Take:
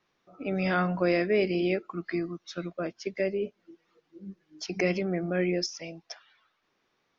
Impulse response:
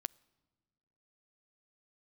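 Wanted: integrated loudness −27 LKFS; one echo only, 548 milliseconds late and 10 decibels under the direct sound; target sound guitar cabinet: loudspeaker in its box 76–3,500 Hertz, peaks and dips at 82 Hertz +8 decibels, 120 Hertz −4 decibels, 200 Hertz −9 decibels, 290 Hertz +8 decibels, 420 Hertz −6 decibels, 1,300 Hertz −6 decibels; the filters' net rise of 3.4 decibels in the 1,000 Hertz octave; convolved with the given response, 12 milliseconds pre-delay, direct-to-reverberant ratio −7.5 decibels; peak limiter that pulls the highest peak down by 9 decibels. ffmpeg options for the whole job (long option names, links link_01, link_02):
-filter_complex "[0:a]equalizer=frequency=1000:width_type=o:gain=8,alimiter=limit=-19.5dB:level=0:latency=1,aecho=1:1:548:0.316,asplit=2[link_01][link_02];[1:a]atrim=start_sample=2205,adelay=12[link_03];[link_02][link_03]afir=irnorm=-1:irlink=0,volume=10dB[link_04];[link_01][link_04]amix=inputs=2:normalize=0,highpass=76,equalizer=frequency=82:width_type=q:width=4:gain=8,equalizer=frequency=120:width_type=q:width=4:gain=-4,equalizer=frequency=200:width_type=q:width=4:gain=-9,equalizer=frequency=290:width_type=q:width=4:gain=8,equalizer=frequency=420:width_type=q:width=4:gain=-6,equalizer=frequency=1300:width_type=q:width=4:gain=-6,lowpass=frequency=3500:width=0.5412,lowpass=frequency=3500:width=1.3066,volume=-3dB"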